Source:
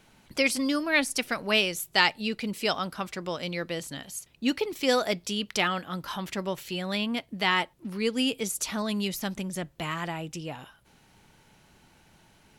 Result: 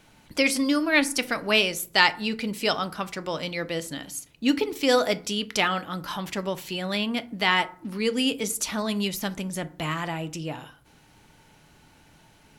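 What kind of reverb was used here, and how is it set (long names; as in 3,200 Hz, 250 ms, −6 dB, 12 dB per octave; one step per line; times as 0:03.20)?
feedback delay network reverb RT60 0.47 s, low-frequency decay 1.35×, high-frequency decay 0.5×, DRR 11 dB
level +2.5 dB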